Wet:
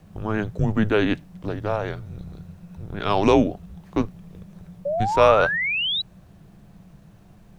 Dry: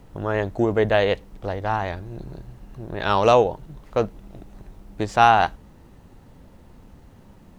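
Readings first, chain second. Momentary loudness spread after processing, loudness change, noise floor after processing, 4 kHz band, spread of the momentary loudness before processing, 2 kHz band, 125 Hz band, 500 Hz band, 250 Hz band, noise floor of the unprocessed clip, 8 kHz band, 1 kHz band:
21 LU, −1.0 dB, −50 dBFS, +5.5 dB, 20 LU, +2.0 dB, +2.0 dB, −0.5 dB, +5.0 dB, −50 dBFS, can't be measured, −4.5 dB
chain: frequency shifter −210 Hz
sound drawn into the spectrogram rise, 0:04.85–0:06.02, 550–4,000 Hz −23 dBFS
level −1 dB

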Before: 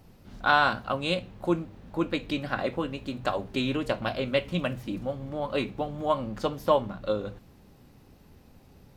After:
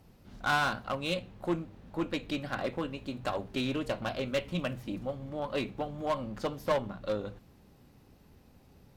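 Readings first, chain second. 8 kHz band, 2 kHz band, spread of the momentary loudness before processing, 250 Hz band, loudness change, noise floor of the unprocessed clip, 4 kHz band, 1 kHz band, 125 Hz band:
can't be measured, −5.0 dB, 9 LU, −4.5 dB, −5.0 dB, −55 dBFS, −4.5 dB, −6.0 dB, −4.0 dB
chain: asymmetric clip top −22 dBFS
harmonic generator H 6 −24 dB, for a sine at −10.5 dBFS
level −4 dB

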